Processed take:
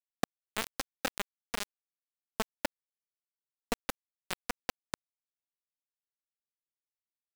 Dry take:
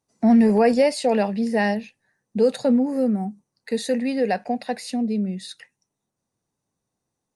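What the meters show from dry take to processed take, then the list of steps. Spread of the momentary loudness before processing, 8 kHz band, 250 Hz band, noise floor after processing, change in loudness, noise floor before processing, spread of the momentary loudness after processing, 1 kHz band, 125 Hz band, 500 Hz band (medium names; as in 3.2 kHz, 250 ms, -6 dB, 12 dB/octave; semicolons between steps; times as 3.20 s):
13 LU, -4.5 dB, -26.5 dB, under -85 dBFS, -17.5 dB, -82 dBFS, 9 LU, -14.0 dB, no reading, -23.0 dB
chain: peaking EQ 79 Hz -8 dB 0.75 oct; compression 5:1, threshold -30 dBFS, peak gain reduction 15.5 dB; bit crusher 4-bit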